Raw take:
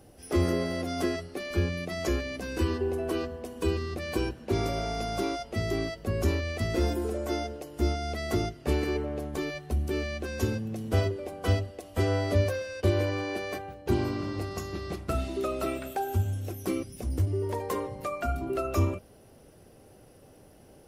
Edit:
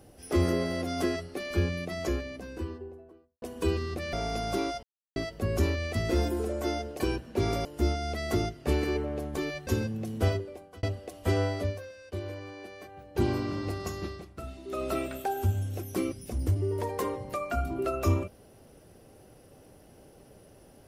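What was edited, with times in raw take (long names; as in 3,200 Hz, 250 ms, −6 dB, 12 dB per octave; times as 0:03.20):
0:01.60–0:03.42: fade out and dull
0:04.13–0:04.78: move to 0:07.65
0:05.48–0:05.81: silence
0:09.67–0:10.38: remove
0:10.92–0:11.54: fade out
0:12.10–0:13.95: duck −11.5 dB, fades 0.37 s
0:14.77–0:15.54: duck −11 dB, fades 0.16 s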